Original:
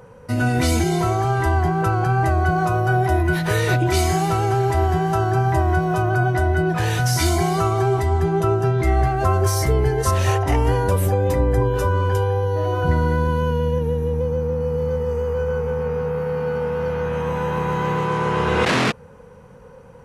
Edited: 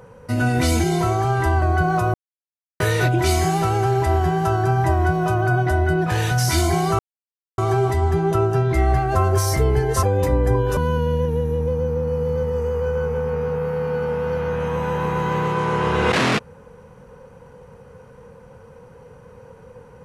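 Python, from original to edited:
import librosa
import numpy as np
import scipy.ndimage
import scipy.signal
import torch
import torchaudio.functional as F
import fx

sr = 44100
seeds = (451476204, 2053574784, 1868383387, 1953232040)

y = fx.edit(x, sr, fx.cut(start_s=1.62, length_s=0.68),
    fx.silence(start_s=2.82, length_s=0.66),
    fx.insert_silence(at_s=7.67, length_s=0.59),
    fx.cut(start_s=10.12, length_s=0.98),
    fx.cut(start_s=11.84, length_s=1.46), tone=tone)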